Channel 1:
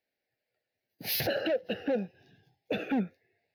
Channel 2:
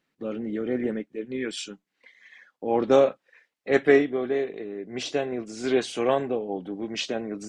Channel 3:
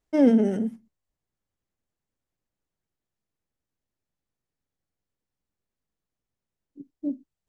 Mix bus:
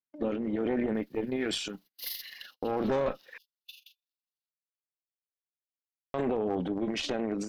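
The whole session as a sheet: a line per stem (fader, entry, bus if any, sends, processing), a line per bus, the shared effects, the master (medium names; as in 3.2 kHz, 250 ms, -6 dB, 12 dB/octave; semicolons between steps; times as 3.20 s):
0.0 dB, 0.95 s, no send, spectral levelling over time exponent 0.6; steep high-pass 2.9 kHz 72 dB/octave; AM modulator 24 Hz, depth 40%
+2.5 dB, 0.00 s, muted 3.38–6.14 s, no send, treble shelf 6.9 kHz -9.5 dB; transient shaper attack +7 dB, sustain +11 dB
-15.5 dB, 0.00 s, no send, high-pass 290 Hz; low-pass that closes with the level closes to 400 Hz, closed at -25.5 dBFS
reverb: none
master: gate -48 dBFS, range -29 dB; valve stage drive 11 dB, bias 0.75; peak limiter -20 dBFS, peak gain reduction 12 dB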